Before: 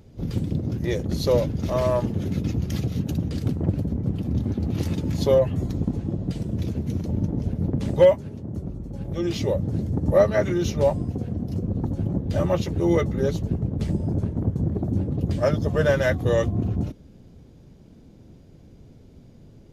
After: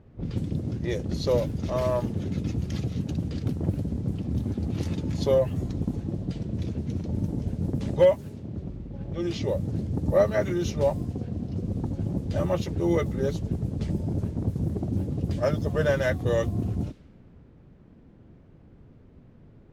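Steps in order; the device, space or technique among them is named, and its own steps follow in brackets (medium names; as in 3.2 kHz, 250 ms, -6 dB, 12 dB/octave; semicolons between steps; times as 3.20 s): cassette deck with a dynamic noise filter (white noise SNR 33 dB; level-controlled noise filter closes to 1.3 kHz, open at -18.5 dBFS); trim -3.5 dB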